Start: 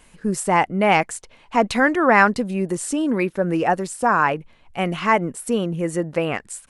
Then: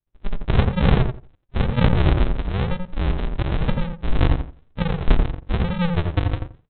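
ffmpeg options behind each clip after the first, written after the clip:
-filter_complex "[0:a]aresample=8000,acrusher=samples=31:mix=1:aa=0.000001:lfo=1:lforange=18.6:lforate=1,aresample=44100,asplit=2[s0][s1];[s1]adelay=86,lowpass=f=1200:p=1,volume=0.668,asplit=2[s2][s3];[s3]adelay=86,lowpass=f=1200:p=1,volume=0.19,asplit=2[s4][s5];[s5]adelay=86,lowpass=f=1200:p=1,volume=0.19[s6];[s0][s2][s4][s6]amix=inputs=4:normalize=0,agate=range=0.0224:threshold=0.0112:ratio=3:detection=peak"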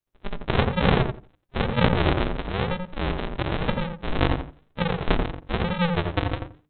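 -af "lowshelf=f=140:g=-12,bandreject=f=50:t=h:w=6,bandreject=f=100:t=h:w=6,bandreject=f=150:t=h:w=6,bandreject=f=200:t=h:w=6,bandreject=f=250:t=h:w=6,bandreject=f=300:t=h:w=6,volume=1.33"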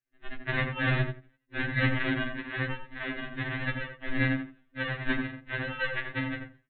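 -af "superequalizer=6b=3.55:7b=0.447:9b=0.562:11b=3.98:12b=1.78,afftfilt=real='re*2.45*eq(mod(b,6),0)':imag='im*2.45*eq(mod(b,6),0)':win_size=2048:overlap=0.75,volume=0.473"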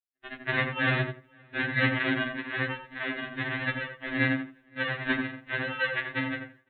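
-filter_complex "[0:a]highpass=f=200:p=1,agate=range=0.0224:threshold=0.002:ratio=3:detection=peak,asplit=2[s0][s1];[s1]adelay=519,volume=0.0355,highshelf=f=4000:g=-11.7[s2];[s0][s2]amix=inputs=2:normalize=0,volume=1.41"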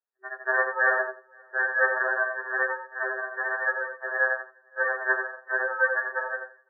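-af "afftfilt=real='re*between(b*sr/4096,380,1900)':imag='im*between(b*sr/4096,380,1900)':win_size=4096:overlap=0.75,volume=2.11"

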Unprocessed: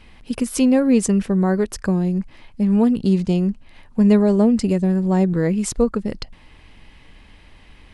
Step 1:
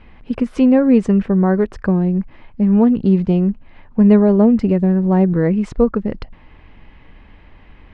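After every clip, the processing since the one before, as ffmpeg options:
-af "lowpass=2000,volume=1.5"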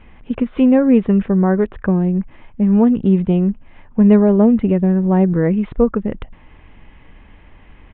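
-af "aresample=8000,aresample=44100"

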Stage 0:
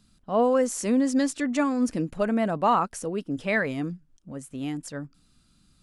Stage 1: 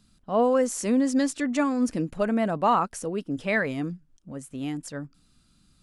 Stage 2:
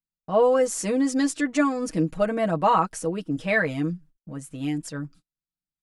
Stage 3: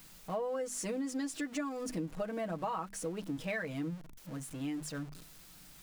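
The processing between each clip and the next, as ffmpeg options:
-af anull
-af "agate=range=0.01:threshold=0.00282:ratio=16:detection=peak,aecho=1:1:6.3:0.81"
-af "aeval=exprs='val(0)+0.5*0.015*sgn(val(0))':c=same,bandreject=f=50:t=h:w=6,bandreject=f=100:t=h:w=6,bandreject=f=150:t=h:w=6,bandreject=f=200:t=h:w=6,bandreject=f=250:t=h:w=6,acompressor=threshold=0.0562:ratio=6,volume=0.376"

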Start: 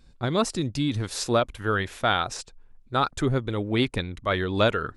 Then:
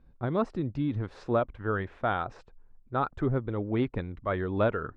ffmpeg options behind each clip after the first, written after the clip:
-af "lowpass=1400,volume=0.668"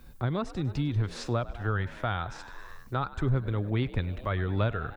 -filter_complex "[0:a]asplit=7[s0][s1][s2][s3][s4][s5][s6];[s1]adelay=100,afreqshift=63,volume=0.106[s7];[s2]adelay=200,afreqshift=126,volume=0.0692[s8];[s3]adelay=300,afreqshift=189,volume=0.0447[s9];[s4]adelay=400,afreqshift=252,volume=0.0292[s10];[s5]adelay=500,afreqshift=315,volume=0.0188[s11];[s6]adelay=600,afreqshift=378,volume=0.0123[s12];[s0][s7][s8][s9][s10][s11][s12]amix=inputs=7:normalize=0,crystalizer=i=8:c=0,acrossover=split=130[s13][s14];[s14]acompressor=threshold=0.00316:ratio=2[s15];[s13][s15]amix=inputs=2:normalize=0,volume=2.51"

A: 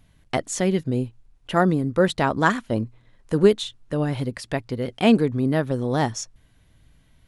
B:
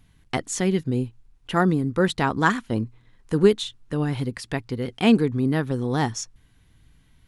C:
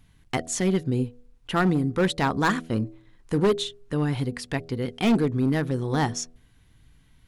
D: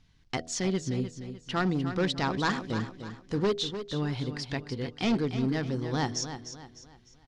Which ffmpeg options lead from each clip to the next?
-af "equalizer=f=600:t=o:w=0.34:g=-10"
-af "bandreject=f=81.32:t=h:w=4,bandreject=f=162.64:t=h:w=4,bandreject=f=243.96:t=h:w=4,bandreject=f=325.28:t=h:w=4,bandreject=f=406.6:t=h:w=4,bandreject=f=487.92:t=h:w=4,bandreject=f=569.24:t=h:w=4,bandreject=f=650.56:t=h:w=4,bandreject=f=731.88:t=h:w=4,volume=6.31,asoftclip=hard,volume=0.158"
-filter_complex "[0:a]lowpass=f=5300:t=q:w=2.5,asplit=2[s0][s1];[s1]aecho=0:1:301|602|903|1204:0.316|0.12|0.0457|0.0174[s2];[s0][s2]amix=inputs=2:normalize=0,volume=0.501"

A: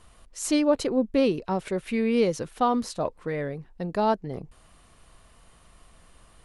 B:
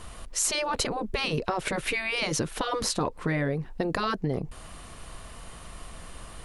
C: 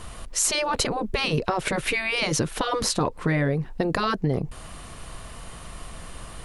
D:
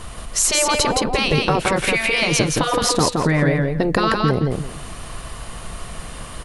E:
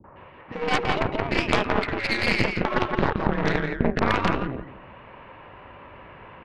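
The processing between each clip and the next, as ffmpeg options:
-filter_complex "[0:a]asplit=2[s0][s1];[s1]alimiter=limit=0.0891:level=0:latency=1:release=37,volume=0.841[s2];[s0][s2]amix=inputs=2:normalize=0,afftfilt=real='re*lt(hypot(re,im),0.398)':imag='im*lt(hypot(re,im),0.398)':win_size=1024:overlap=0.75,acompressor=threshold=0.0282:ratio=4,volume=2.11"
-af "equalizer=f=130:t=o:w=0.77:g=2.5,volume=1.5"
-af "aecho=1:1:169|338|507:0.708|0.149|0.0312,volume=1.78"
-filter_complex "[0:a]acrossover=split=460|1600[s0][s1][s2];[s1]adelay=40[s3];[s2]adelay=160[s4];[s0][s3][s4]amix=inputs=3:normalize=0,highpass=f=210:t=q:w=0.5412,highpass=f=210:t=q:w=1.307,lowpass=f=2600:t=q:w=0.5176,lowpass=f=2600:t=q:w=0.7071,lowpass=f=2600:t=q:w=1.932,afreqshift=-120,aeval=exprs='0.473*(cos(1*acos(clip(val(0)/0.473,-1,1)))-cos(1*PI/2))+0.106*(cos(3*acos(clip(val(0)/0.473,-1,1)))-cos(3*PI/2))+0.0299*(cos(5*acos(clip(val(0)/0.473,-1,1)))-cos(5*PI/2))+0.211*(cos(6*acos(clip(val(0)/0.473,-1,1)))-cos(6*PI/2))+0.106*(cos(8*acos(clip(val(0)/0.473,-1,1)))-cos(8*PI/2))':c=same"

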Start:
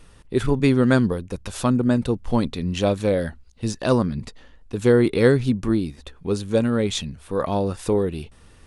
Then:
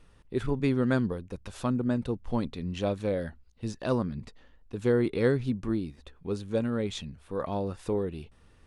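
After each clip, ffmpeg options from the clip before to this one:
-af "highshelf=f=5500:g=-8.5,volume=0.376"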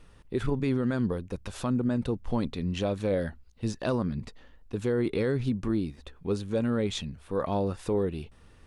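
-af "alimiter=limit=0.0794:level=0:latency=1:release=57,volume=1.5"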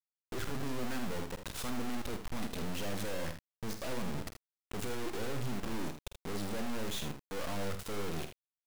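-filter_complex "[0:a]aeval=exprs='(tanh(70.8*val(0)+0.7)-tanh(0.7))/70.8':c=same,acrusher=bits=5:dc=4:mix=0:aa=0.000001,asplit=2[s0][s1];[s1]aecho=0:1:49|80:0.335|0.316[s2];[s0][s2]amix=inputs=2:normalize=0,volume=2.82"

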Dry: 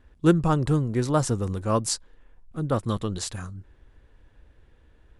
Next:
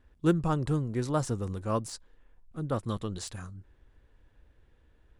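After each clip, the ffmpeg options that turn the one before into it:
-af "deesser=0.55,volume=0.501"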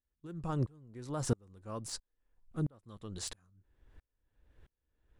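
-af "alimiter=limit=0.0794:level=0:latency=1:release=79,aeval=exprs='val(0)*pow(10,-36*if(lt(mod(-1.5*n/s,1),2*abs(-1.5)/1000),1-mod(-1.5*n/s,1)/(2*abs(-1.5)/1000),(mod(-1.5*n/s,1)-2*abs(-1.5)/1000)/(1-2*abs(-1.5)/1000))/20)':c=same,volume=1.58"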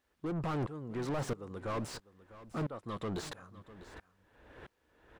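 -filter_complex "[0:a]asplit=2[s0][s1];[s1]highpass=f=720:p=1,volume=100,asoftclip=type=tanh:threshold=0.126[s2];[s0][s2]amix=inputs=2:normalize=0,lowpass=f=1200:p=1,volume=0.501,aecho=1:1:650:0.141,volume=0.376"

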